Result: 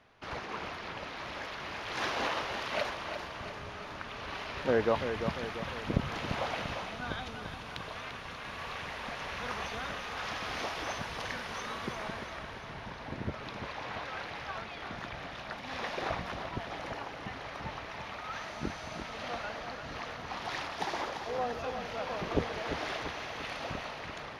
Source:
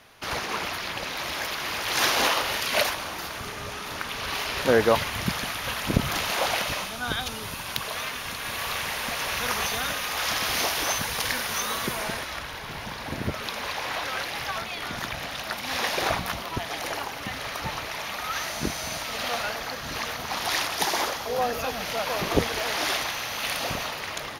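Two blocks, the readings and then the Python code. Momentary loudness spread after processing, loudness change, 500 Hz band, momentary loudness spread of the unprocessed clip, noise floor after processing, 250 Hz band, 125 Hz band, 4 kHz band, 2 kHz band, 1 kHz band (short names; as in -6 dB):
8 LU, -9.5 dB, -6.5 dB, 8 LU, -44 dBFS, -6.0 dB, -6.0 dB, -13.5 dB, -9.5 dB, -7.5 dB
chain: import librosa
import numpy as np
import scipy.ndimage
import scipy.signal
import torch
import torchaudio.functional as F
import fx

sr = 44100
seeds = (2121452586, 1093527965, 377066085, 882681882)

p1 = fx.spacing_loss(x, sr, db_at_10k=21)
p2 = p1 + fx.echo_feedback(p1, sr, ms=344, feedback_pct=55, wet_db=-8.0, dry=0)
y = F.gain(torch.from_numpy(p2), -6.5).numpy()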